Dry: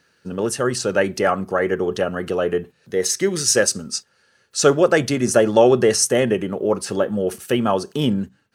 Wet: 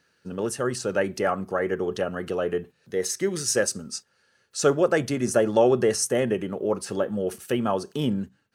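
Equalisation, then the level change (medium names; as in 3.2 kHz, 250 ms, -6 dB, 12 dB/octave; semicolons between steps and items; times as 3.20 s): dynamic bell 4 kHz, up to -4 dB, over -31 dBFS, Q 0.73; -5.5 dB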